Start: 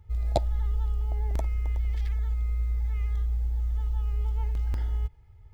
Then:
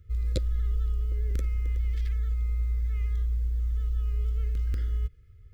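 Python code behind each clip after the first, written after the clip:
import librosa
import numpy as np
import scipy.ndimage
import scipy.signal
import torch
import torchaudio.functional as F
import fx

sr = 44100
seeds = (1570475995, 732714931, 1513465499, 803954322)

y = scipy.signal.sosfilt(scipy.signal.ellip(3, 1.0, 40, [510.0, 1300.0], 'bandstop', fs=sr, output='sos'), x)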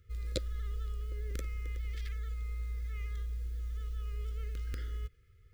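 y = fx.low_shelf(x, sr, hz=270.0, db=-11.5)
y = y * librosa.db_to_amplitude(1.0)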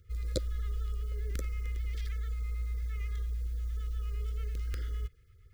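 y = fx.filter_lfo_notch(x, sr, shape='sine', hz=8.8, low_hz=220.0, high_hz=2900.0, q=0.85)
y = y * librosa.db_to_amplitude(3.0)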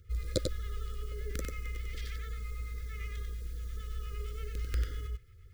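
y = x + 10.0 ** (-4.5 / 20.0) * np.pad(x, (int(94 * sr / 1000.0), 0))[:len(x)]
y = y * librosa.db_to_amplitude(2.5)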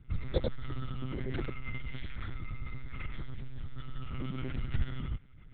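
y = fx.lpc_monotone(x, sr, seeds[0], pitch_hz=130.0, order=10)
y = y * librosa.db_to_amplitude(2.0)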